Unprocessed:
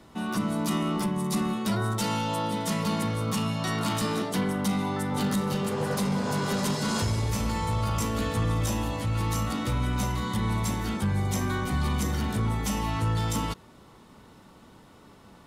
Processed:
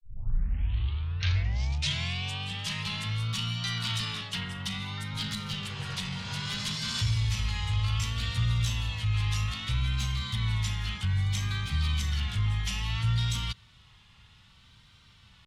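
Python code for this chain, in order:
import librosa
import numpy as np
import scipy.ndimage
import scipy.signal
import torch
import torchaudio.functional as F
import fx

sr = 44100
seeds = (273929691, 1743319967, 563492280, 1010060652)

y = fx.tape_start_head(x, sr, length_s=2.78)
y = fx.curve_eq(y, sr, hz=(110.0, 300.0, 580.0, 3200.0, 14000.0), db=(0, -24, -21, 6, -16))
y = fx.vibrato(y, sr, rate_hz=0.62, depth_cents=94.0)
y = y * librosa.db_to_amplitude(1.0)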